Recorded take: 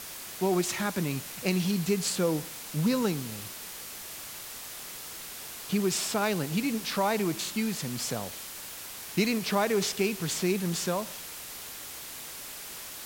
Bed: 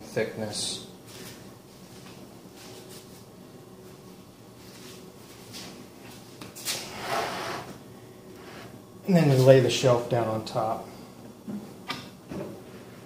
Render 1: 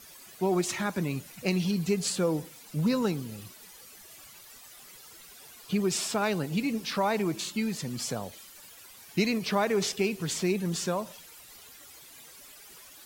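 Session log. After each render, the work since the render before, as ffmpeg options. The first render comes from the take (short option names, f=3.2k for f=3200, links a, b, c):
-af "afftdn=nr=13:nf=-42"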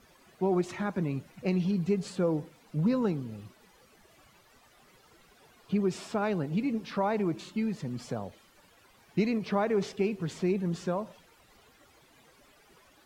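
-af "lowpass=f=1.1k:p=1"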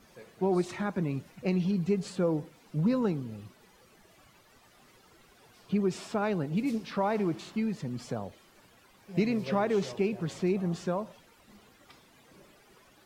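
-filter_complex "[1:a]volume=-23dB[a];[0:a][a]amix=inputs=2:normalize=0"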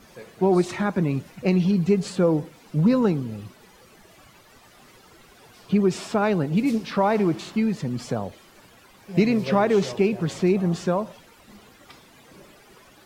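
-af "volume=8dB"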